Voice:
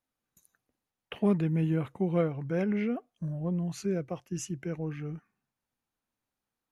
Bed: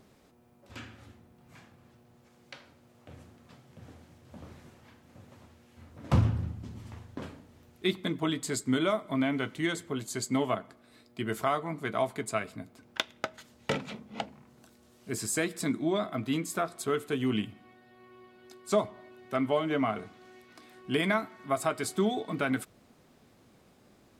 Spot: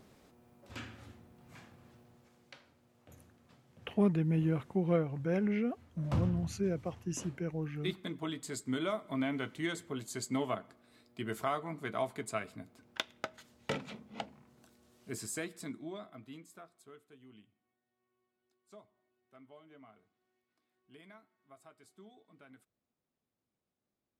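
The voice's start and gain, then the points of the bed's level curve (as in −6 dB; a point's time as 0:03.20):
2.75 s, −2.5 dB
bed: 0:02.01 −0.5 dB
0:02.63 −8.5 dB
0:08.50 −8.5 dB
0:09.22 −5.5 dB
0:15.02 −5.5 dB
0:17.22 −29 dB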